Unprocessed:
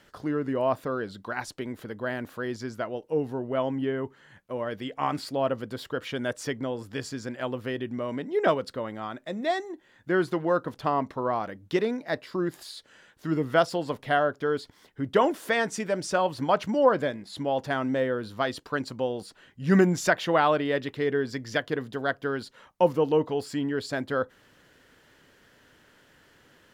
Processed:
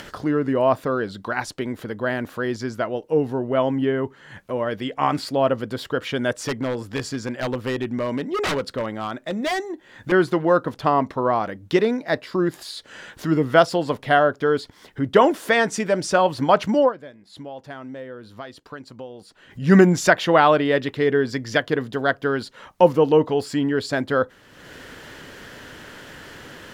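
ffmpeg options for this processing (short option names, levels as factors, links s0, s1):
-filter_complex "[0:a]asettb=1/sr,asplit=3[s0][s1][s2];[s0]atrim=end=6.344[s3];[s1]atrim=start=6.34:end=10.12,asetpts=PTS-STARTPTS,afade=t=in:d=0.004:c=qsin,afade=t=out:st=3.776:d=0.004:c=qsin,aeval=exprs='0.0562*(abs(mod(val(0)/0.0562+3,4)-2)-1)':c=same[s4];[s2]atrim=start=10.116[s5];[s3][s4]acrossfade=d=0.004:c1=hsin:c2=qsin[s6];[s6][s5]acrossfade=d=0.004:c1=qsin:c2=hsin,asplit=3[s7][s8][s9];[s7]atrim=end=16.93,asetpts=PTS-STARTPTS,afade=t=out:st=16.79:d=0.14:silence=0.112202[s10];[s8]atrim=start=16.93:end=19.49,asetpts=PTS-STARTPTS,volume=0.112[s11];[s9]atrim=start=19.49,asetpts=PTS-STARTPTS,afade=t=in:d=0.14:silence=0.112202[s12];[s10][s11][s12]concat=n=3:v=0:a=1,acompressor=mode=upward:threshold=0.0158:ratio=2.5,highshelf=f=10000:g=-4,volume=2.24"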